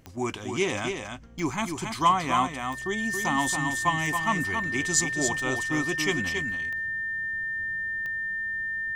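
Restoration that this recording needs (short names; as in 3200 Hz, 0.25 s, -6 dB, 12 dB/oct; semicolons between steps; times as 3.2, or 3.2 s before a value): de-click; notch 1800 Hz, Q 30; inverse comb 0.276 s -6 dB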